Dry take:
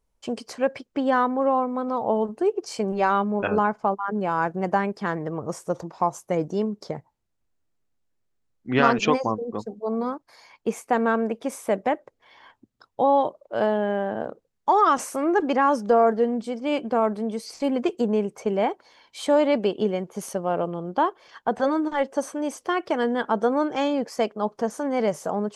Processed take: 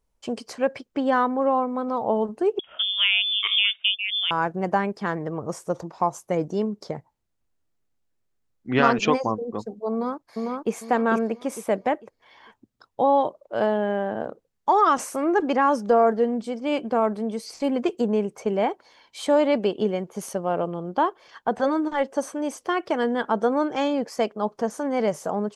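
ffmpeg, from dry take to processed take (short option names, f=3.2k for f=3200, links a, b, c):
-filter_complex "[0:a]asettb=1/sr,asplit=3[a][b][c];[a]atrim=end=2.594[d];[b]atrim=start=2.59:end=4.31,asetpts=PTS-STARTPTS,afade=t=in:d=0.004:c=qsin,afade=t=out:st=1.716:d=0.004:c=qsin,lowpass=f=3.1k:t=q:w=0.5098,lowpass=f=3.1k:t=q:w=0.6013,lowpass=f=3.1k:t=q:w=0.9,lowpass=f=3.1k:t=q:w=2.563,afreqshift=-3700[e];[c]atrim=start=4.306[f];[d][e]acrossfade=d=0.004:c1=hsin:c2=qsin[g];[g][f]acrossfade=d=0.004:c1=qsin:c2=hsin,asplit=2[h][i];[i]afade=t=in:st=9.91:d=0.01,afade=t=out:st=10.73:d=0.01,aecho=0:1:450|900|1350|1800:0.794328|0.238298|0.0714895|0.0214469[j];[h][j]amix=inputs=2:normalize=0"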